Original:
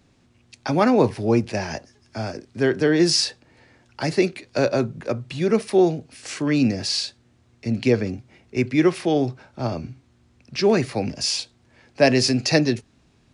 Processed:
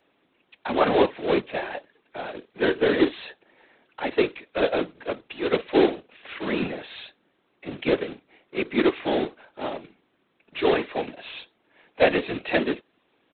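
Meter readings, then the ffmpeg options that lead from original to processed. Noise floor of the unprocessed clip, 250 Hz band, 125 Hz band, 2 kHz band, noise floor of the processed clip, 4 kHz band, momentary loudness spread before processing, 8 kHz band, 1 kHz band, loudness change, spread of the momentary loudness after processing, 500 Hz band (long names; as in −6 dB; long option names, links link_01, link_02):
−60 dBFS, −6.0 dB, −14.0 dB, −0.5 dB, −69 dBFS, −8.0 dB, 14 LU, below −40 dB, −0.5 dB, −3.5 dB, 18 LU, −2.5 dB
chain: -af "highpass=frequency=310:width=0.5412,highpass=frequency=310:width=1.3066,aresample=8000,acrusher=bits=2:mode=log:mix=0:aa=0.000001,aresample=44100,afftfilt=real='hypot(re,im)*cos(2*PI*random(0))':imag='hypot(re,im)*sin(2*PI*random(1))':win_size=512:overlap=0.75,volume=4dB"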